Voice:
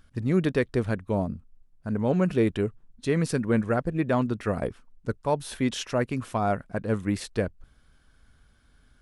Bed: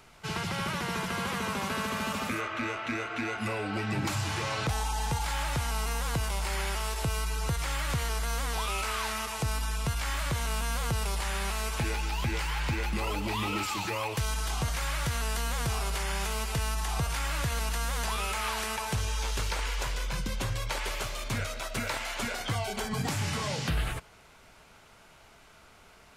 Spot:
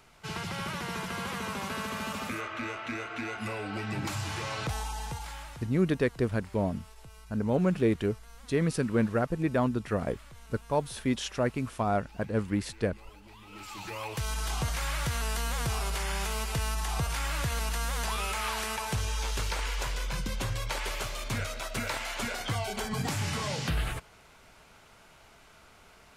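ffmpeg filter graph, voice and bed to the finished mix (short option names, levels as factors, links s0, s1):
-filter_complex "[0:a]adelay=5450,volume=0.75[s0];[1:a]volume=7.5,afade=t=out:st=4.7:d=1:silence=0.125893,afade=t=in:st=13.46:d=1.02:silence=0.0944061[s1];[s0][s1]amix=inputs=2:normalize=0"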